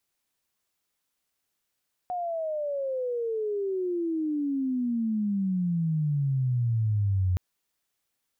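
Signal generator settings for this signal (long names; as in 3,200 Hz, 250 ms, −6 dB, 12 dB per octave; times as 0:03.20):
glide logarithmic 730 Hz → 89 Hz −28 dBFS → −21.5 dBFS 5.27 s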